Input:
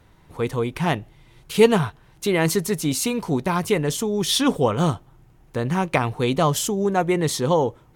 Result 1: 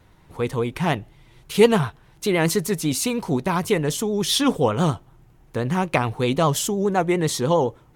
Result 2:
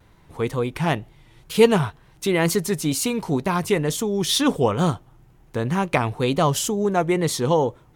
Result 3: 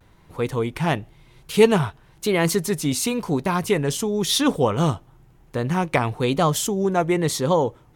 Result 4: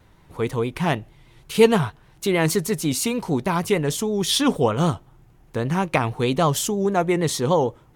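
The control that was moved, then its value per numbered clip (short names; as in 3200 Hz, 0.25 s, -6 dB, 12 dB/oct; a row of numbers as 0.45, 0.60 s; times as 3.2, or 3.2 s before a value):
vibrato, rate: 9.8, 2.1, 0.97, 6.4 Hz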